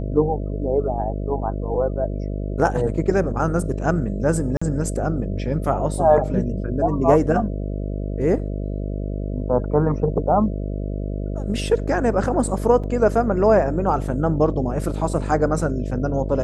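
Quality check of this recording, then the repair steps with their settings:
buzz 50 Hz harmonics 13 -26 dBFS
4.57–4.62 gap 45 ms
12.83–12.84 gap 6.1 ms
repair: de-hum 50 Hz, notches 13; interpolate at 4.57, 45 ms; interpolate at 12.83, 6.1 ms

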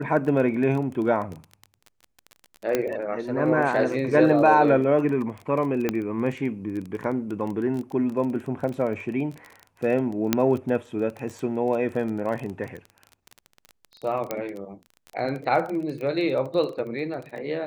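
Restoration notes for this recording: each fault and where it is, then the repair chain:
crackle 22/s -31 dBFS
2.75 pop -9 dBFS
5.89 pop -10 dBFS
10.33 pop -4 dBFS
14.31 pop -12 dBFS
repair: de-click

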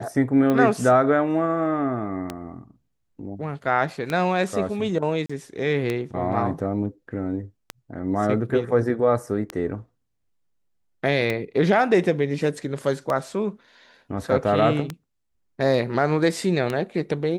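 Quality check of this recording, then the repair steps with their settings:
tick 33 1/3 rpm -12 dBFS
5.26–5.29 gap 35 ms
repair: de-click; interpolate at 5.26, 35 ms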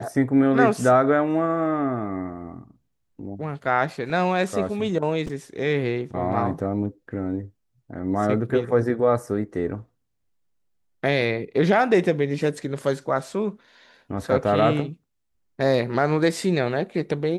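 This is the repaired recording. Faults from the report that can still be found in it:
none

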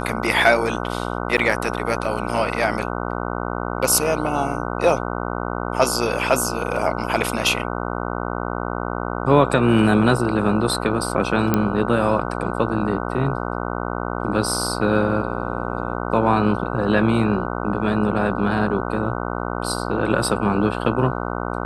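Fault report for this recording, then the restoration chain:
buzz 60 Hz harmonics 25 -26 dBFS
1.37–1.38 gap 7.7 ms
11.54 pop -4 dBFS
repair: de-click; de-hum 60 Hz, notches 25; interpolate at 1.37, 7.7 ms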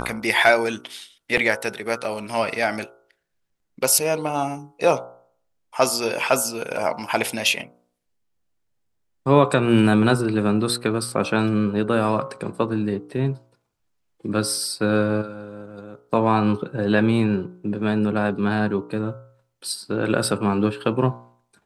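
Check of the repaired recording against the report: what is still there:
none

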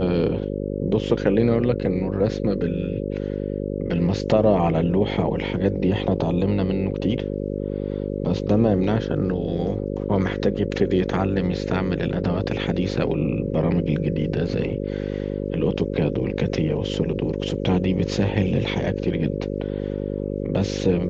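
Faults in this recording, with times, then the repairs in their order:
buzz 50 Hz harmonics 11 -27 dBFS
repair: de-hum 50 Hz, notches 11

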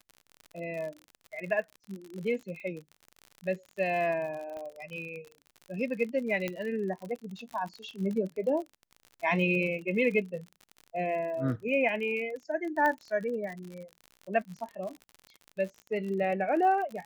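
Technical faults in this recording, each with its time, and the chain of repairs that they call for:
crackle 51/s -37 dBFS
4.57 pop -30 dBFS
6.48 pop -18 dBFS
12.86 pop -18 dBFS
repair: de-click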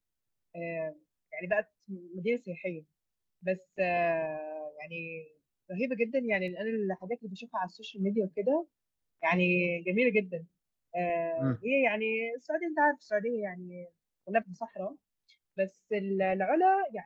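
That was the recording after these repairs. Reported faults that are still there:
4.57 pop
6.48 pop

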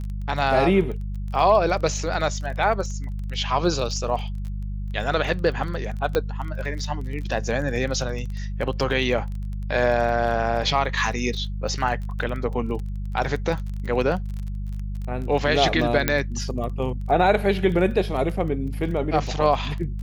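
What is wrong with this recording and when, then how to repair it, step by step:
crackle 24/s -31 dBFS
hum 50 Hz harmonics 4 -29 dBFS
6.15 pop -9 dBFS
16.08 pop -4 dBFS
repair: de-click; de-hum 50 Hz, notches 4

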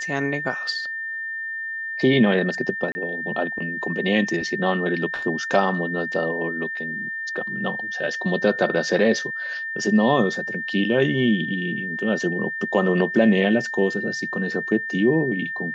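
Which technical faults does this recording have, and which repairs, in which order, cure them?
tone 1800 Hz -27 dBFS
2.92–2.95 gap 30 ms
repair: notch 1800 Hz, Q 30; interpolate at 2.92, 30 ms

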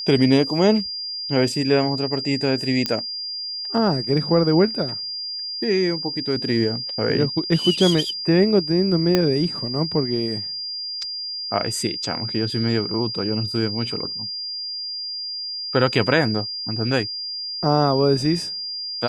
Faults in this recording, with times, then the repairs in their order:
tone 4800 Hz -27 dBFS
2.86 pop -6 dBFS
9.15 pop -4 dBFS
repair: de-click; notch 4800 Hz, Q 30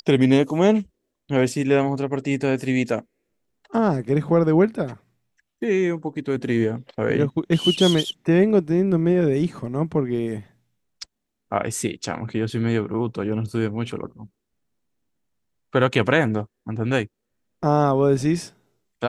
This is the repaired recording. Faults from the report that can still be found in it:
9.15 pop

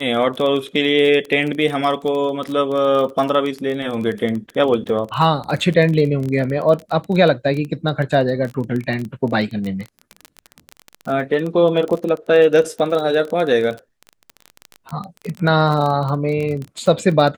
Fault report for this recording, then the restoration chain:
crackle 23/s -22 dBFS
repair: de-click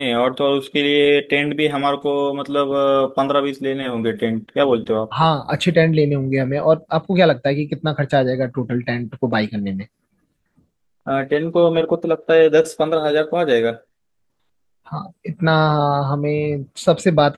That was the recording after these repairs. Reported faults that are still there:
none

